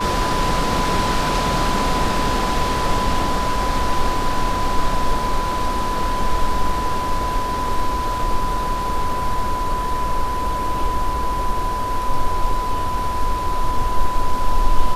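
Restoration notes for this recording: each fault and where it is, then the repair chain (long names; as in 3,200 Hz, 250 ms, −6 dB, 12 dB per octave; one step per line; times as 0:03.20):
whistle 1,000 Hz −22 dBFS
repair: notch filter 1,000 Hz, Q 30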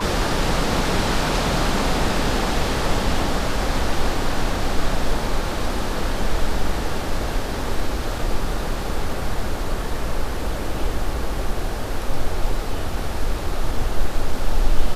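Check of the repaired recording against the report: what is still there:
none of them is left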